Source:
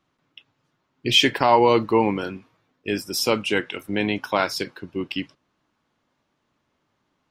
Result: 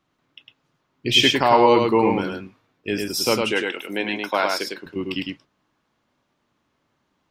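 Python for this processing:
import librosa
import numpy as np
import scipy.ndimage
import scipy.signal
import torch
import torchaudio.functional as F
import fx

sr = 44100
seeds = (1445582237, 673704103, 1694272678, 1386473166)

y = fx.highpass(x, sr, hz=300.0, slope=12, at=(3.52, 4.86))
y = y + 10.0 ** (-3.5 / 20.0) * np.pad(y, (int(104 * sr / 1000.0), 0))[:len(y)]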